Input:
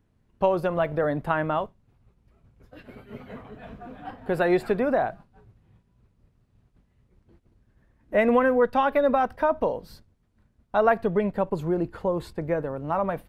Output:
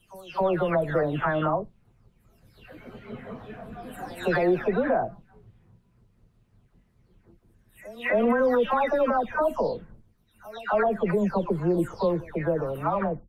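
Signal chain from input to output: spectral delay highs early, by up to 0.431 s; pre-echo 0.266 s -23 dB; limiter -17.5 dBFS, peak gain reduction 10 dB; gain +2.5 dB

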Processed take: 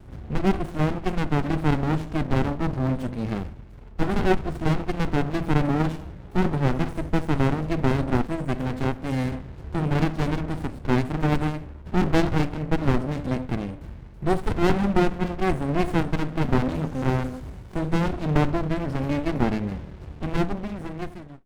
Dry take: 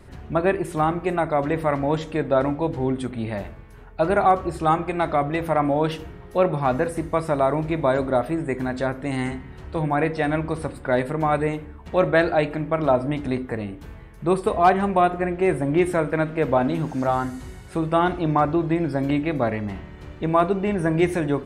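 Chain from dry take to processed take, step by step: ending faded out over 1.42 s; running maximum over 65 samples; gain +2 dB

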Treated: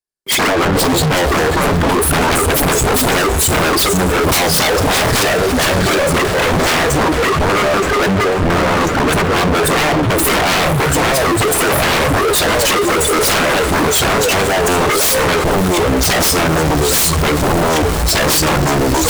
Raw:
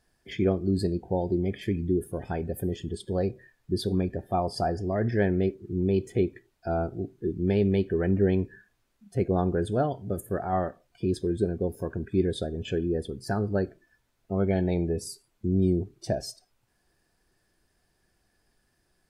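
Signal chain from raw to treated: echoes that change speed 85 ms, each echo -2 st, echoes 3; dynamic EQ 1200 Hz, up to +6 dB, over -42 dBFS, Q 0.71; in parallel at -5 dB: backlash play -35.5 dBFS; on the sum: tone controls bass -6 dB, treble +12 dB; small resonant body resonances 400/1100/2200 Hz, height 7 dB, ringing for 45 ms; compressor 20:1, threshold -26 dBFS, peak gain reduction 17.5 dB; spectral noise reduction 23 dB; sine folder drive 20 dB, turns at -15.5 dBFS; on a send: diffused feedback echo 0.558 s, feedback 70%, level -11 dB; on the sum: sample leveller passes 5; three-band expander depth 40%; gain -2.5 dB

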